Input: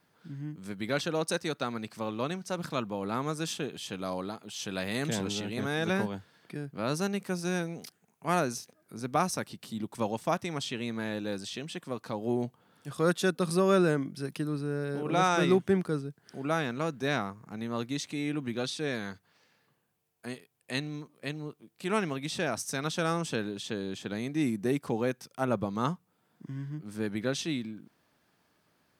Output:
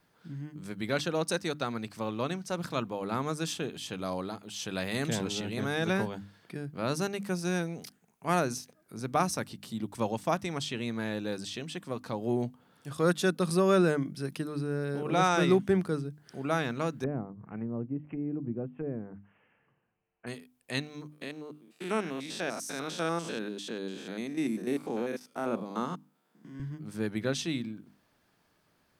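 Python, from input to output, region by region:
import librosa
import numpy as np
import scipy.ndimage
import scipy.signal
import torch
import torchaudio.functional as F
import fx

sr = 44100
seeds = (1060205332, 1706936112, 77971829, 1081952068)

y = fx.chain(x, sr, fx.steep_lowpass(hz=3000.0, slope=96),
    fx.env_lowpass_down(base_hz=450.0, full_db=-31.5), at=(17.04, 20.27))
y = fx.chain(y, sr, fx.spec_steps(hold_ms=100),
    fx.highpass(hz=190.0, slope=24), at=(21.12, 26.6))
y = fx.low_shelf(y, sr, hz=62.0, db=11.5)
y = fx.hum_notches(y, sr, base_hz=50, count=6)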